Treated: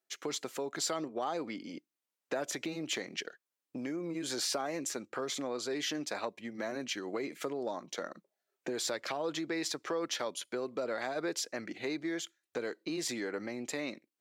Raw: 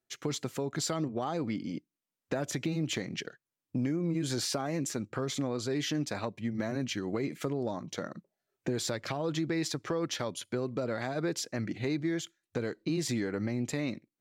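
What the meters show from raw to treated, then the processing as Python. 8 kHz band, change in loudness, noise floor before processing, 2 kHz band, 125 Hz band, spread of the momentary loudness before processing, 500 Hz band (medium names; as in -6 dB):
0.0 dB, -3.0 dB, under -85 dBFS, 0.0 dB, -16.5 dB, 6 LU, -2.0 dB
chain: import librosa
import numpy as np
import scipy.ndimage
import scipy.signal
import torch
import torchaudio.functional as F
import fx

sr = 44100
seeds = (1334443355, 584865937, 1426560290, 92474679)

y = scipy.signal.sosfilt(scipy.signal.butter(2, 380.0, 'highpass', fs=sr, output='sos'), x)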